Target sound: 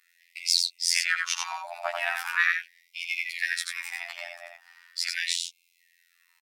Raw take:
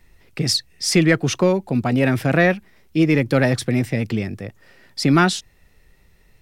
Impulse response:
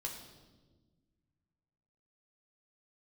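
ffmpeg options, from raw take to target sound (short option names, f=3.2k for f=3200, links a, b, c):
-af "aecho=1:1:89:0.631,afftfilt=real='hypot(re,im)*cos(PI*b)':imag='0':win_size=2048:overlap=0.75,afftfilt=real='re*gte(b*sr/1024,560*pow(2100/560,0.5+0.5*sin(2*PI*0.4*pts/sr)))':imag='im*gte(b*sr/1024,560*pow(2100/560,0.5+0.5*sin(2*PI*0.4*pts/sr)))':win_size=1024:overlap=0.75"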